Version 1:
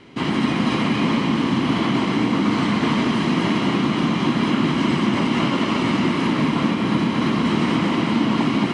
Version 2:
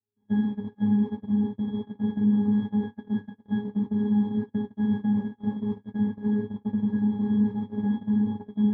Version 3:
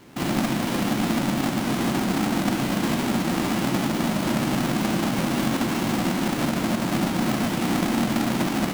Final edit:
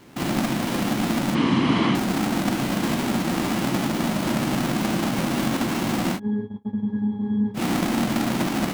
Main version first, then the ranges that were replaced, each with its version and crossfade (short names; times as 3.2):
3
1.35–1.95 from 1
6.17–7.57 from 2, crossfade 0.06 s